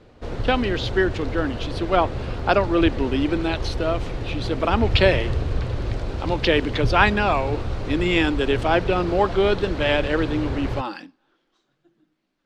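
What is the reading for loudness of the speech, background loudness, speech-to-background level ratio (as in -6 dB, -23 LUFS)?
-22.5 LUFS, -29.0 LUFS, 6.5 dB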